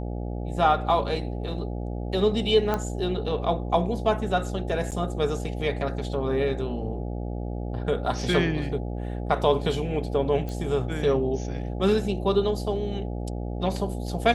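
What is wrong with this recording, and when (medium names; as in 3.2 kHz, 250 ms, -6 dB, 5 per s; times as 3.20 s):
buzz 60 Hz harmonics 14 -31 dBFS
2.74 s: pop -13 dBFS
4.91–4.92 s: dropout 8.1 ms
10.49 s: pop -21 dBFS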